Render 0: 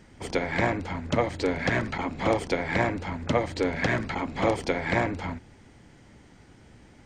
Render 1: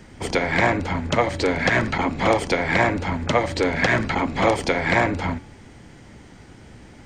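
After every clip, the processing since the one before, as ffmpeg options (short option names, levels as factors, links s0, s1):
-filter_complex "[0:a]bandreject=f=286:t=h:w=4,bandreject=f=572:t=h:w=4,bandreject=f=858:t=h:w=4,bandreject=f=1144:t=h:w=4,bandreject=f=1430:t=h:w=4,bandreject=f=1716:t=h:w=4,bandreject=f=2002:t=h:w=4,bandreject=f=2288:t=h:w=4,bandreject=f=2574:t=h:w=4,bandreject=f=2860:t=h:w=4,bandreject=f=3146:t=h:w=4,bandreject=f=3432:t=h:w=4,bandreject=f=3718:t=h:w=4,bandreject=f=4004:t=h:w=4,bandreject=f=4290:t=h:w=4,bandreject=f=4576:t=h:w=4,bandreject=f=4862:t=h:w=4,bandreject=f=5148:t=h:w=4,bandreject=f=5434:t=h:w=4,bandreject=f=5720:t=h:w=4,bandreject=f=6006:t=h:w=4,bandreject=f=6292:t=h:w=4,bandreject=f=6578:t=h:w=4,bandreject=f=6864:t=h:w=4,bandreject=f=7150:t=h:w=4,bandreject=f=7436:t=h:w=4,bandreject=f=7722:t=h:w=4,bandreject=f=8008:t=h:w=4,bandreject=f=8294:t=h:w=4,bandreject=f=8580:t=h:w=4,bandreject=f=8866:t=h:w=4,bandreject=f=9152:t=h:w=4,bandreject=f=9438:t=h:w=4,bandreject=f=9724:t=h:w=4,acrossover=split=630|1500[s0][s1][s2];[s0]alimiter=limit=0.0708:level=0:latency=1:release=165[s3];[s3][s1][s2]amix=inputs=3:normalize=0,volume=2.51"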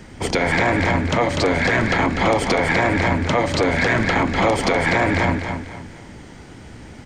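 -af "aecho=1:1:246|492|738|984:0.447|0.147|0.0486|0.0161,alimiter=limit=0.224:level=0:latency=1:release=30,volume=1.68"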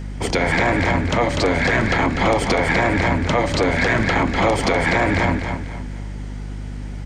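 -af "aeval=exprs='val(0)+0.0398*(sin(2*PI*50*n/s)+sin(2*PI*2*50*n/s)/2+sin(2*PI*3*50*n/s)/3+sin(2*PI*4*50*n/s)/4+sin(2*PI*5*50*n/s)/5)':c=same"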